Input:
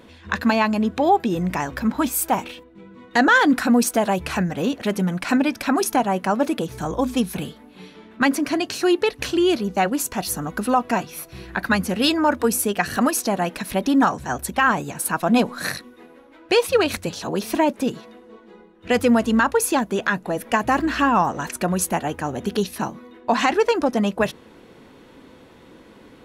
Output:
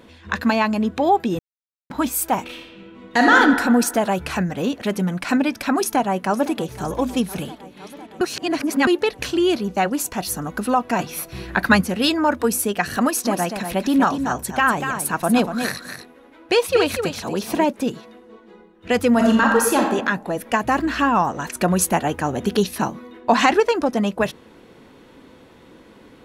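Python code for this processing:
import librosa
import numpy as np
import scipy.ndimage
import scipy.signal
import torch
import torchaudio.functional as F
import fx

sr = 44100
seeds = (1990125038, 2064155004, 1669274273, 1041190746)

y = fx.reverb_throw(x, sr, start_s=2.45, length_s=0.9, rt60_s=1.5, drr_db=0.0)
y = fx.echo_throw(y, sr, start_s=5.78, length_s=0.93, ms=510, feedback_pct=75, wet_db=-16.5)
y = fx.echo_single(y, sr, ms=241, db=-8.0, at=(13.24, 17.65), fade=0.02)
y = fx.reverb_throw(y, sr, start_s=19.1, length_s=0.78, rt60_s=0.88, drr_db=0.0)
y = fx.edit(y, sr, fx.silence(start_s=1.39, length_s=0.51),
    fx.reverse_span(start_s=8.21, length_s=0.66),
    fx.clip_gain(start_s=10.99, length_s=0.82, db=5.0),
    fx.clip_gain(start_s=21.57, length_s=2.03, db=3.5), tone=tone)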